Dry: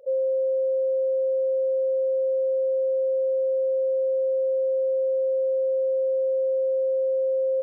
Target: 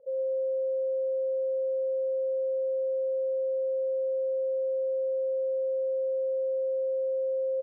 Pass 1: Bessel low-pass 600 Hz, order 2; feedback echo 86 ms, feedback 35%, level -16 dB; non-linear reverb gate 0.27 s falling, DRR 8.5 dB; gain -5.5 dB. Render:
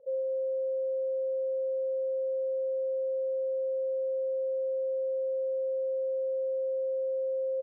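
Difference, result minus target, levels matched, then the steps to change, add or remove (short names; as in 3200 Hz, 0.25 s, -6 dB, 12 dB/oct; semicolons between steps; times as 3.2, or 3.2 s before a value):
echo 35 ms early
change: feedback echo 0.121 s, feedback 35%, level -16 dB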